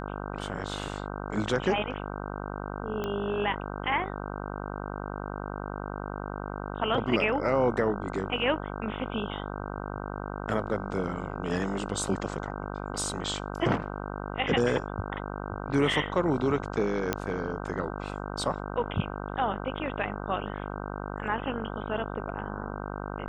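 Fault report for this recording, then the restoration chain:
buzz 50 Hz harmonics 31 -36 dBFS
3.04 s: pop -19 dBFS
17.13 s: pop -11 dBFS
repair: de-click; de-hum 50 Hz, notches 31

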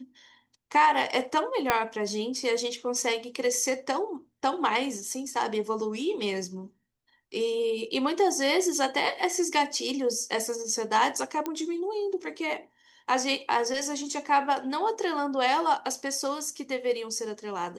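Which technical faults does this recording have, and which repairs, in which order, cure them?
1.70 s: pop -7 dBFS
11.46 s: pop -17 dBFS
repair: de-click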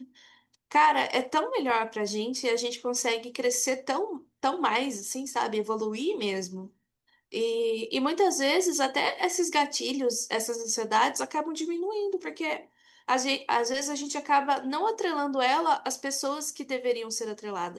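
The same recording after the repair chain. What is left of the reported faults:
1.70 s: pop

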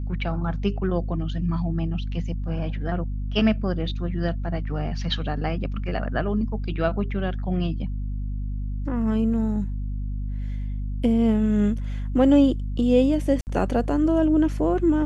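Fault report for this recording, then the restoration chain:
hum 50 Hz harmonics 5 -28 dBFS
13.41–13.47 s: dropout 59 ms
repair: de-hum 50 Hz, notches 5; interpolate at 13.41 s, 59 ms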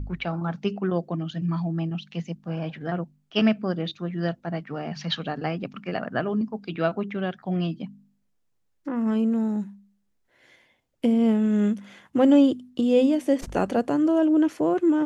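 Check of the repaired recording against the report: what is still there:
nothing left

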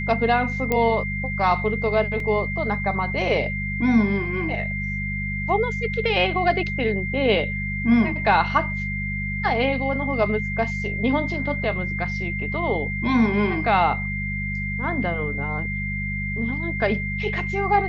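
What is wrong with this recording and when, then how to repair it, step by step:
hum 50 Hz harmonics 4 -29 dBFS
whine 2.1 kHz -28 dBFS
0.72 s: pop -9 dBFS
2.20 s: dropout 2.1 ms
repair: de-click; de-hum 50 Hz, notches 4; band-stop 2.1 kHz, Q 30; interpolate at 2.20 s, 2.1 ms

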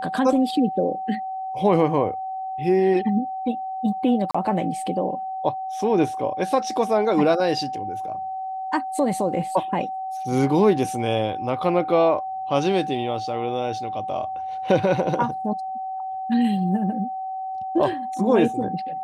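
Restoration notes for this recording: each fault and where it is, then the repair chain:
whine 760 Hz -27 dBFS
4.31–4.34 s: dropout 35 ms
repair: band-stop 760 Hz, Q 30; interpolate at 4.31 s, 35 ms

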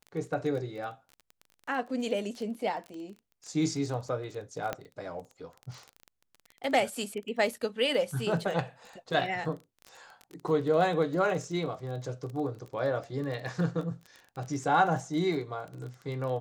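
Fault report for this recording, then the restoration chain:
crackle 21 per s -36 dBFS
4.73 s: pop -17 dBFS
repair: de-click

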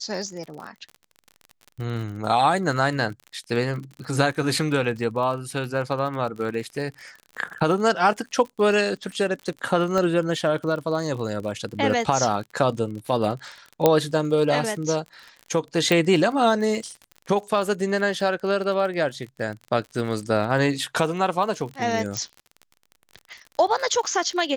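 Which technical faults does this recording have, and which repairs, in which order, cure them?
crackle 42 per s -32 dBFS
9.98 s: pop -13 dBFS
13.86 s: pop -3 dBFS
15.92 s: pop
22.17 s: pop -12 dBFS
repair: de-click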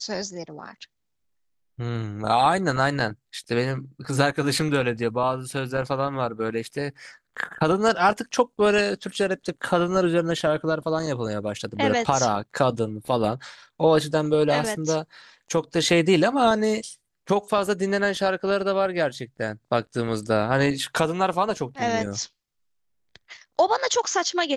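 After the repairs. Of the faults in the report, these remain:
9.98 s: pop
15.92 s: pop

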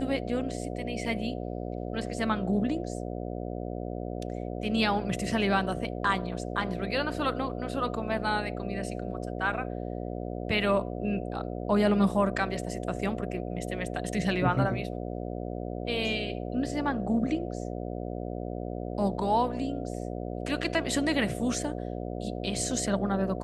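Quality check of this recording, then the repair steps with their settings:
buzz 60 Hz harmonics 12 -35 dBFS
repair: de-hum 60 Hz, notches 12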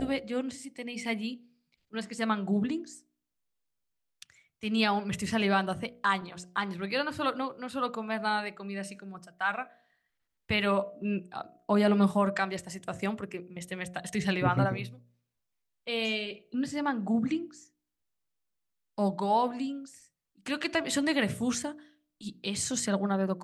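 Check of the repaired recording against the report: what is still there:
nothing left

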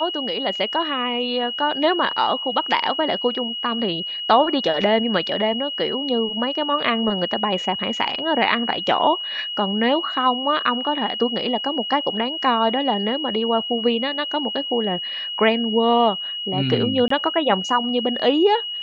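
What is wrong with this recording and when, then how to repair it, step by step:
whine 2.9 kHz -26 dBFS
17.08–17.10 s: dropout 24 ms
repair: band-stop 2.9 kHz, Q 30; interpolate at 17.08 s, 24 ms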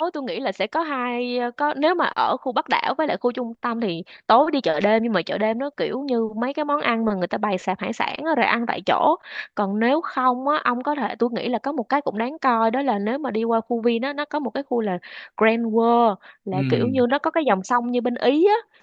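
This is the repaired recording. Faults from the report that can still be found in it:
nothing left

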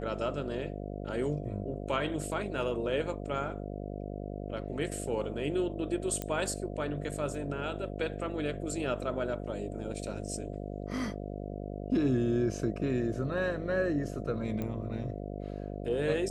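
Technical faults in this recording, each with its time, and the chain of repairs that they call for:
buzz 50 Hz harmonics 14 -39 dBFS
6.22 s: pop -19 dBFS
14.62 s: pop -23 dBFS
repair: de-click; de-hum 50 Hz, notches 14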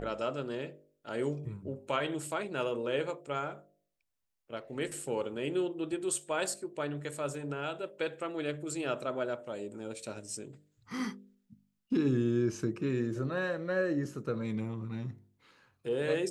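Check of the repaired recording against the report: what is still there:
nothing left

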